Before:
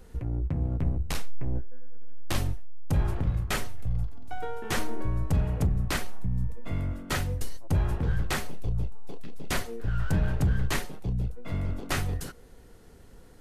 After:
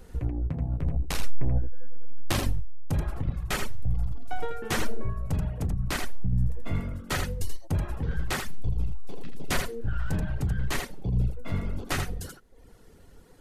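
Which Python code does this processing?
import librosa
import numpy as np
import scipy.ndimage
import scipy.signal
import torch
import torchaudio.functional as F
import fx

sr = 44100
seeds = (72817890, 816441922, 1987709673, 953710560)

y = fx.rider(x, sr, range_db=4, speed_s=0.5)
y = y + 10.0 ** (-4.0 / 20.0) * np.pad(y, (int(82 * sr / 1000.0), 0))[:len(y)]
y = fx.dynamic_eq(y, sr, hz=490.0, q=0.91, threshold_db=-51.0, ratio=4.0, max_db=-6, at=(8.4, 9.13))
y = fx.dereverb_blind(y, sr, rt60_s=0.67)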